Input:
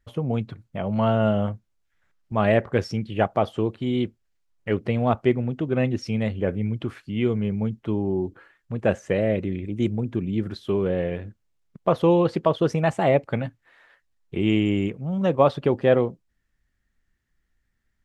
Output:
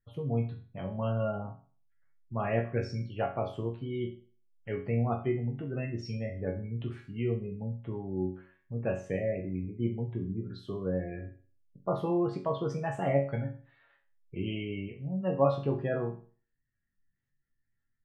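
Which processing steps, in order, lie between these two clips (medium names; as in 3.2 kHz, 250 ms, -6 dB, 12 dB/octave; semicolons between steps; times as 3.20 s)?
peaking EQ 140 Hz +5 dB 0.78 oct; spectral gate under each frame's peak -30 dB strong; chord resonator F#2 major, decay 0.4 s; trim +4 dB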